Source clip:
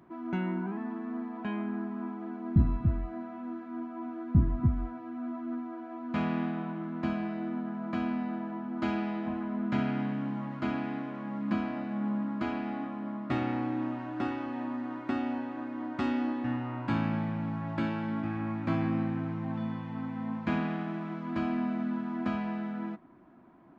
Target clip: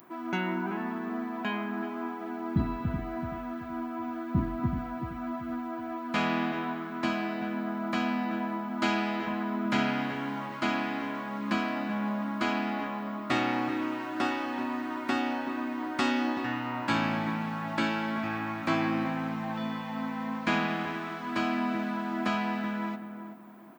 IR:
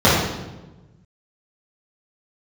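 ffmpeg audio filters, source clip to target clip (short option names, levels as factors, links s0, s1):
-filter_complex "[0:a]aemphasis=mode=production:type=riaa,asplit=2[s0][s1];[s1]adelay=379,lowpass=f=1000:p=1,volume=0.422,asplit=2[s2][s3];[s3]adelay=379,lowpass=f=1000:p=1,volume=0.31,asplit=2[s4][s5];[s5]adelay=379,lowpass=f=1000:p=1,volume=0.31,asplit=2[s6][s7];[s7]adelay=379,lowpass=f=1000:p=1,volume=0.31[s8];[s2][s4][s6][s8]amix=inputs=4:normalize=0[s9];[s0][s9]amix=inputs=2:normalize=0,volume=2.11"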